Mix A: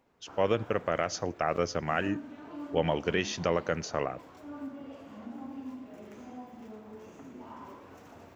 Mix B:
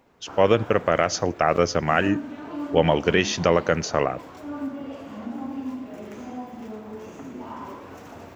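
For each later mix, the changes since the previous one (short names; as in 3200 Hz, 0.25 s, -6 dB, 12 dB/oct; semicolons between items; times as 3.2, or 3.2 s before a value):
speech +9.0 dB; background +9.5 dB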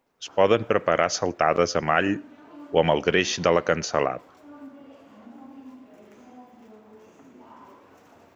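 background -10.5 dB; master: add low shelf 140 Hz -9 dB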